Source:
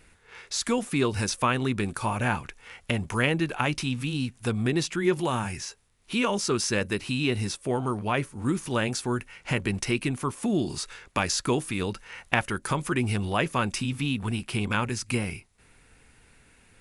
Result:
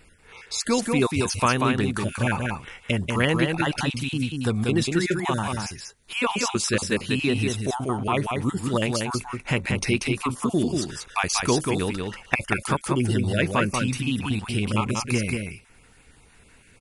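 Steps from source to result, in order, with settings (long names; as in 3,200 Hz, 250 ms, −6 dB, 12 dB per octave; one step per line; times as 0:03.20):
time-frequency cells dropped at random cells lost 23%
on a send: single-tap delay 188 ms −4 dB
on the sum: level +3 dB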